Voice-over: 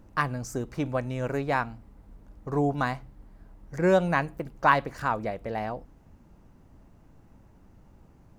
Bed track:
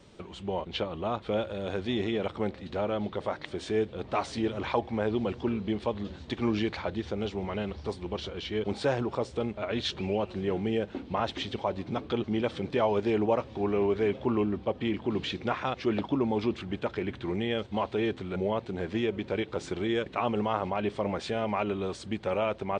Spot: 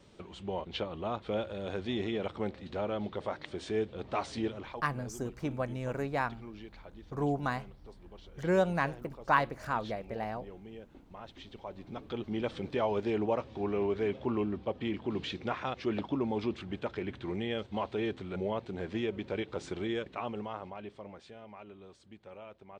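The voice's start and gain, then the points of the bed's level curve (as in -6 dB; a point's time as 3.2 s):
4.65 s, -5.5 dB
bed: 4.46 s -4 dB
4.86 s -19 dB
11.14 s -19 dB
12.45 s -4.5 dB
19.84 s -4.5 dB
21.41 s -20 dB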